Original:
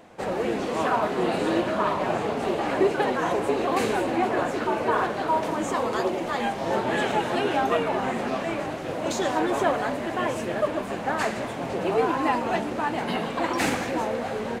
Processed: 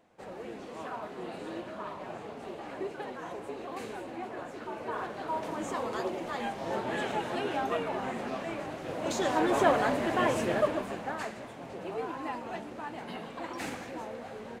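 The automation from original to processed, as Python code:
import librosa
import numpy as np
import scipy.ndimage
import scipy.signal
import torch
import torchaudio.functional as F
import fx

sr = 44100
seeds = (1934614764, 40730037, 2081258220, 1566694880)

y = fx.gain(x, sr, db=fx.line((4.45, -15.5), (5.63, -8.0), (8.66, -8.0), (9.71, -0.5), (10.53, -0.5), (11.36, -13.0)))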